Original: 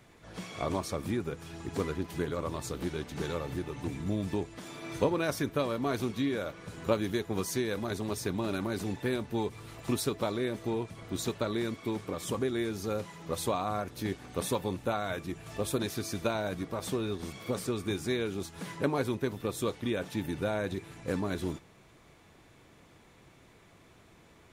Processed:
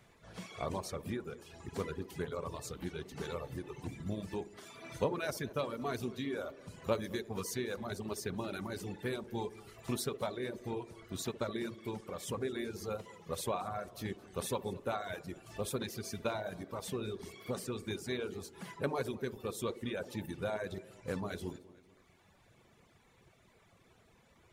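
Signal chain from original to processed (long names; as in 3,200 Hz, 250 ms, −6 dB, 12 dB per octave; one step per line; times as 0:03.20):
parametric band 300 Hz −7.5 dB 0.35 octaves
feedback echo with a band-pass in the loop 65 ms, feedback 75%, band-pass 370 Hz, level −6 dB
reverb reduction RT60 1.3 s
feedback echo with a swinging delay time 222 ms, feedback 53%, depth 112 cents, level −21.5 dB
level −4 dB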